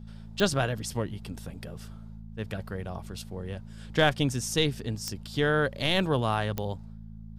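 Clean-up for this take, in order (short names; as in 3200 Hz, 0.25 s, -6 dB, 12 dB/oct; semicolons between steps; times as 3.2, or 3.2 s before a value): clip repair -11.5 dBFS; de-click; de-hum 54.8 Hz, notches 4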